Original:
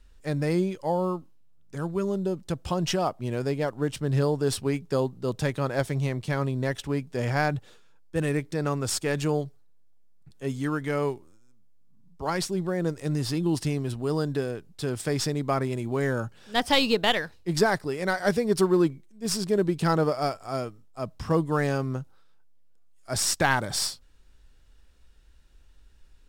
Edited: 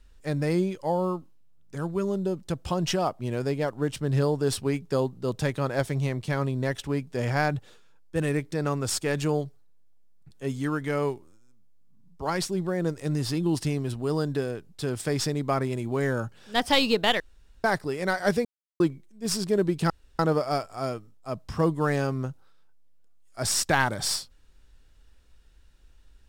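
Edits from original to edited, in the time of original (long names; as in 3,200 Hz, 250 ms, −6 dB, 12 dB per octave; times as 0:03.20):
0:17.20–0:17.64: fill with room tone
0:18.45–0:18.80: silence
0:19.90: splice in room tone 0.29 s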